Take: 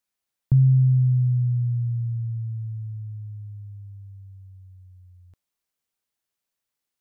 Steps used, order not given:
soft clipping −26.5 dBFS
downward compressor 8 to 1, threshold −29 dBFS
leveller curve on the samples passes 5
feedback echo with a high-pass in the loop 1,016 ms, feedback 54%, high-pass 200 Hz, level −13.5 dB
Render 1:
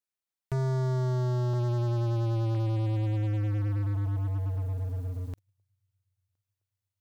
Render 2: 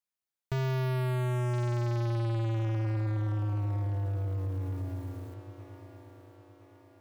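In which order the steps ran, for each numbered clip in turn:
downward compressor, then feedback echo with a high-pass in the loop, then leveller curve on the samples, then soft clipping
leveller curve on the samples, then feedback echo with a high-pass in the loop, then soft clipping, then downward compressor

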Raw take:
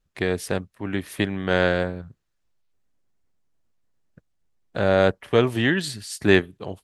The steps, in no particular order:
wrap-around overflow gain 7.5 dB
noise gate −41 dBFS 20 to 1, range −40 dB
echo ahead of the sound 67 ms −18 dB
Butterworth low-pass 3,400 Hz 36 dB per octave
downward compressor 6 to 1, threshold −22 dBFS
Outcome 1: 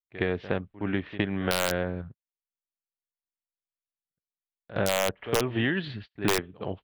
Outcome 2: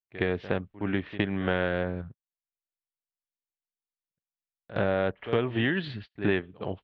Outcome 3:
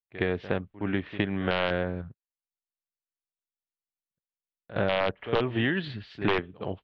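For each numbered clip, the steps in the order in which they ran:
Butterworth low-pass, then noise gate, then echo ahead of the sound, then wrap-around overflow, then downward compressor
Butterworth low-pass, then noise gate, then echo ahead of the sound, then downward compressor, then wrap-around overflow
noise gate, then echo ahead of the sound, then wrap-around overflow, then Butterworth low-pass, then downward compressor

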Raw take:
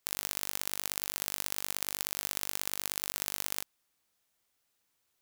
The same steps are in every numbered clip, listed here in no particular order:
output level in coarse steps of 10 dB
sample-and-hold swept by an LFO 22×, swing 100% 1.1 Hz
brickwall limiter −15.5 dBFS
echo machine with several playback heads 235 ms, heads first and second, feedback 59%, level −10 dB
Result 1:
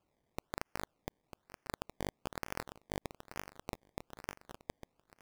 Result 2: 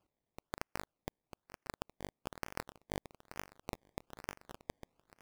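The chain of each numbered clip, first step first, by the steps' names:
echo machine with several playback heads, then sample-and-hold swept by an LFO, then brickwall limiter, then output level in coarse steps
echo machine with several playback heads, then brickwall limiter, then sample-and-hold swept by an LFO, then output level in coarse steps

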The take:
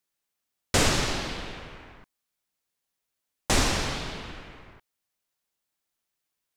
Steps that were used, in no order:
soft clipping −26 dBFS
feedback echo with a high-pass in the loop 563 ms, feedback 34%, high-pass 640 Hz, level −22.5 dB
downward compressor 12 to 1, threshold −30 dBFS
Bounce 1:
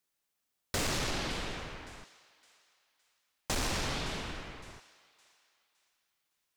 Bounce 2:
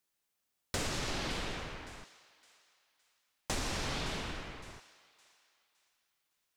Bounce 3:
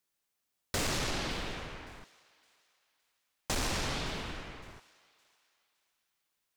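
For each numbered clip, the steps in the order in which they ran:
feedback echo with a high-pass in the loop, then soft clipping, then downward compressor
feedback echo with a high-pass in the loop, then downward compressor, then soft clipping
soft clipping, then feedback echo with a high-pass in the loop, then downward compressor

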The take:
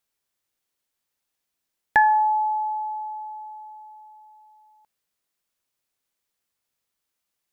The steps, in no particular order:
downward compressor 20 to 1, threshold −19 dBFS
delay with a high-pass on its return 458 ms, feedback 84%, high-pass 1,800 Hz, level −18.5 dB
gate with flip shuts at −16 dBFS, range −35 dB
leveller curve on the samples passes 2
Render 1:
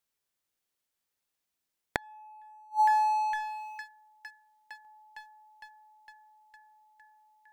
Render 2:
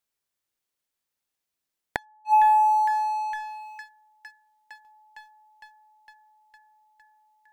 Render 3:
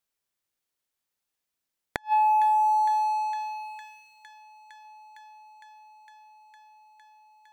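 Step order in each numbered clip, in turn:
delay with a high-pass on its return, then downward compressor, then leveller curve on the samples, then gate with flip
delay with a high-pass on its return, then gate with flip, then downward compressor, then leveller curve on the samples
leveller curve on the samples, then downward compressor, then delay with a high-pass on its return, then gate with flip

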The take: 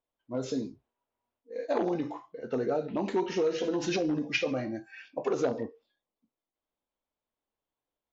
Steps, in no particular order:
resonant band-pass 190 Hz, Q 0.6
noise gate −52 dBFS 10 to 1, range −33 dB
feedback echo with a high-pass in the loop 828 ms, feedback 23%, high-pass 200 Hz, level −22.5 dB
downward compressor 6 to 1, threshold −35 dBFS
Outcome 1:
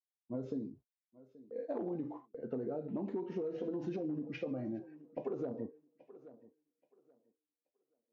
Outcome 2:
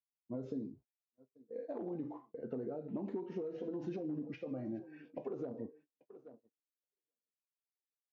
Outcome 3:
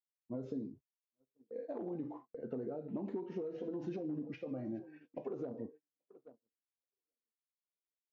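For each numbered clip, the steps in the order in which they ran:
resonant band-pass, then noise gate, then feedback echo with a high-pass in the loop, then downward compressor
feedback echo with a high-pass in the loop, then noise gate, then downward compressor, then resonant band-pass
feedback echo with a high-pass in the loop, then downward compressor, then resonant band-pass, then noise gate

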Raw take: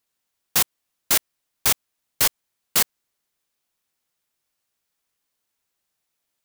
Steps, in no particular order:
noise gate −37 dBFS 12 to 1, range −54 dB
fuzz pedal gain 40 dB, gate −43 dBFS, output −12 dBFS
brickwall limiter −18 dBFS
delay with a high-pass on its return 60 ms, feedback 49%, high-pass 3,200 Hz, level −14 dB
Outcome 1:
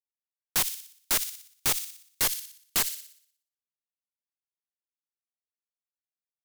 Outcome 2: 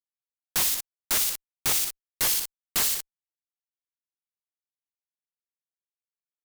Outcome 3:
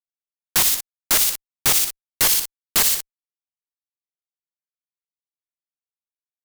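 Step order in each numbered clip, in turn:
noise gate, then fuzz pedal, then delay with a high-pass on its return, then brickwall limiter
delay with a high-pass on its return, then noise gate, then fuzz pedal, then brickwall limiter
delay with a high-pass on its return, then noise gate, then brickwall limiter, then fuzz pedal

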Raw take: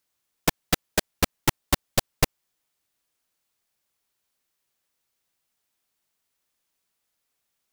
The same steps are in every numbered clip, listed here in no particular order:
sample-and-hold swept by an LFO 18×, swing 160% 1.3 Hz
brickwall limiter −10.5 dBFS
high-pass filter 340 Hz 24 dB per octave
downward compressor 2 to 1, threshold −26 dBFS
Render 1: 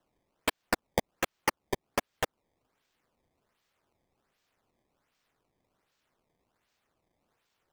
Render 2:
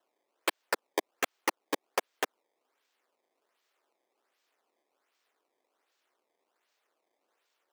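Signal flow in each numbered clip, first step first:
downward compressor, then brickwall limiter, then high-pass filter, then sample-and-hold swept by an LFO
brickwall limiter, then sample-and-hold swept by an LFO, then high-pass filter, then downward compressor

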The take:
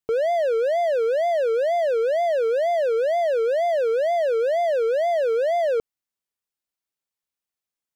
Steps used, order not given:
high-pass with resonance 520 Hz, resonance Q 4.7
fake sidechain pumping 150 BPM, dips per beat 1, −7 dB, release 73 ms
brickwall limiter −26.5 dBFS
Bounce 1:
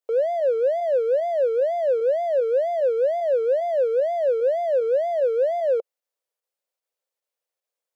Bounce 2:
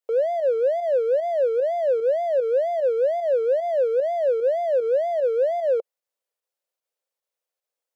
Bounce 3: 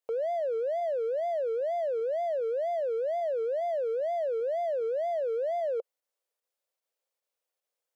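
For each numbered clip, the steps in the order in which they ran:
fake sidechain pumping, then brickwall limiter, then high-pass with resonance
brickwall limiter, then high-pass with resonance, then fake sidechain pumping
high-pass with resonance, then fake sidechain pumping, then brickwall limiter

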